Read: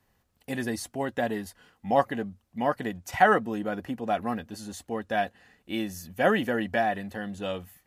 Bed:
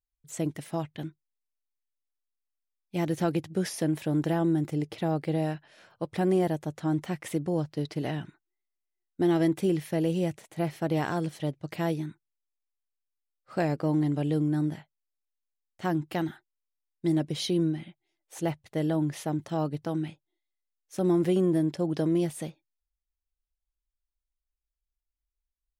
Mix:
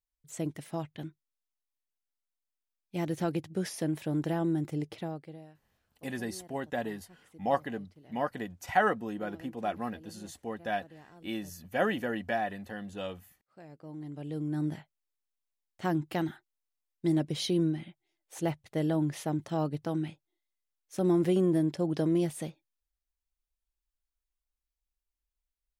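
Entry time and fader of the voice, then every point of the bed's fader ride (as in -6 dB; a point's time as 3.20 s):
5.55 s, -5.5 dB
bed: 4.94 s -4 dB
5.53 s -25.5 dB
13.55 s -25.5 dB
14.74 s -1.5 dB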